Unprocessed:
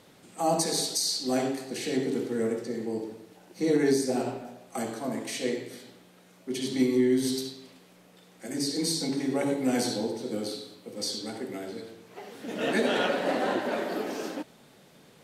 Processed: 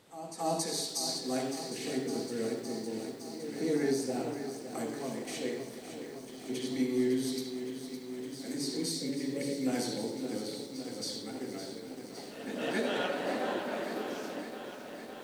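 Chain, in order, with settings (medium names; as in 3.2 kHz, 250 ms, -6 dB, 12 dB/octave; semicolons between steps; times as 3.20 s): pre-echo 275 ms -12 dB; time-frequency box 8.92–9.66 s, 570–1700 Hz -18 dB; bit-crushed delay 561 ms, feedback 80%, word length 8-bit, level -10 dB; trim -6.5 dB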